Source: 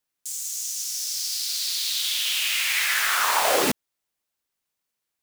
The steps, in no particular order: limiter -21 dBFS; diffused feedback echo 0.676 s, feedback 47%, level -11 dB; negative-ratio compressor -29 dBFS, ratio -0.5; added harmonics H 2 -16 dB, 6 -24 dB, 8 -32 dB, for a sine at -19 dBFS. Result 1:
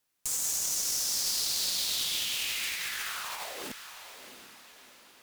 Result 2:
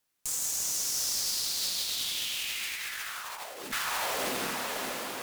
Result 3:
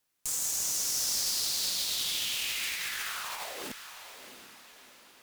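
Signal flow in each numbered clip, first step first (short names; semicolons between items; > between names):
negative-ratio compressor > limiter > added harmonics > diffused feedback echo; diffused feedback echo > negative-ratio compressor > added harmonics > limiter; negative-ratio compressor > added harmonics > limiter > diffused feedback echo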